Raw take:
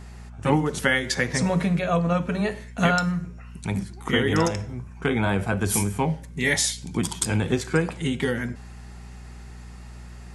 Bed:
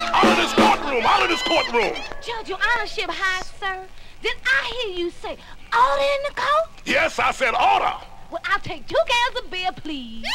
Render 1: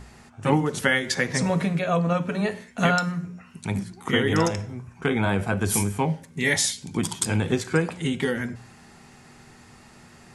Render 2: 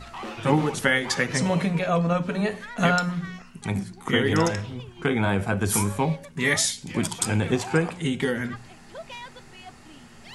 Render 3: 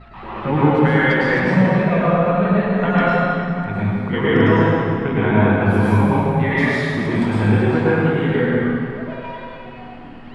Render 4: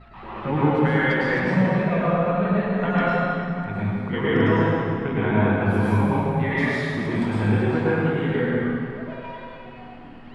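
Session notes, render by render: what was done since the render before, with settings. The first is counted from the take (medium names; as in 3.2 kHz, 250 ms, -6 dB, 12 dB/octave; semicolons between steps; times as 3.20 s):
de-hum 60 Hz, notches 3
add bed -20.5 dB
distance through air 440 m; plate-style reverb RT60 2.5 s, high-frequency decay 0.7×, pre-delay 90 ms, DRR -9.5 dB
trim -5 dB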